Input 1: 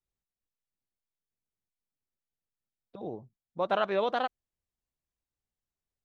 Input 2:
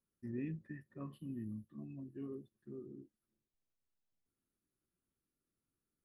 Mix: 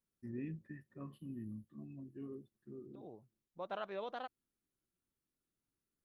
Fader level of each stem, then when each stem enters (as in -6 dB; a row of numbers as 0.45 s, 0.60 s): -14.5 dB, -2.0 dB; 0.00 s, 0.00 s